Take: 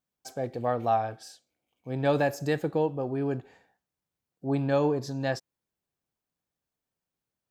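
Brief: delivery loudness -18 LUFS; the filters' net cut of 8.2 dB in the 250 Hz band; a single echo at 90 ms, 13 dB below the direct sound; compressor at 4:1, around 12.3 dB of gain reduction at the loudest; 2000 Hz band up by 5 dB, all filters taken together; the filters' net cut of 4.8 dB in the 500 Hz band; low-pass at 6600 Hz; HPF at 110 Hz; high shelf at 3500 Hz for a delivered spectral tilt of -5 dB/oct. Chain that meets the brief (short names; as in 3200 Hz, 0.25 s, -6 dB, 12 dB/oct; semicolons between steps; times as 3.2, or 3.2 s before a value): HPF 110 Hz; LPF 6600 Hz; bell 250 Hz -9 dB; bell 500 Hz -4 dB; bell 2000 Hz +8 dB; high shelf 3500 Hz -5.5 dB; compressor 4:1, threshold -37 dBFS; echo 90 ms -13 dB; gain +23.5 dB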